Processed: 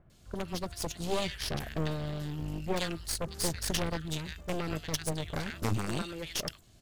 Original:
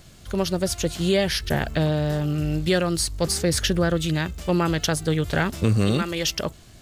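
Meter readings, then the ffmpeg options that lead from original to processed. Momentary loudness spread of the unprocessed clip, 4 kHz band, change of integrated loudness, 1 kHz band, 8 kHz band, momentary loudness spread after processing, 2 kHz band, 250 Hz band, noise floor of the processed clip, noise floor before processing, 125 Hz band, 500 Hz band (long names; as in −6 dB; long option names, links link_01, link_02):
4 LU, −9.5 dB, −11.5 dB, −9.0 dB, −8.5 dB, 5 LU, −11.5 dB, −13.0 dB, −59 dBFS, −47 dBFS, −12.5 dB, −12.5 dB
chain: -filter_complex "[0:a]acrossover=split=1700[link_01][link_02];[link_02]adelay=100[link_03];[link_01][link_03]amix=inputs=2:normalize=0,aeval=exprs='0.355*(cos(1*acos(clip(val(0)/0.355,-1,1)))-cos(1*PI/2))+0.0708*(cos(3*acos(clip(val(0)/0.355,-1,1)))-cos(3*PI/2))+0.141*(cos(4*acos(clip(val(0)/0.355,-1,1)))-cos(4*PI/2))+0.0562*(cos(6*acos(clip(val(0)/0.355,-1,1)))-cos(6*PI/2))':channel_layout=same,asoftclip=type=tanh:threshold=-10.5dB,volume=-4dB"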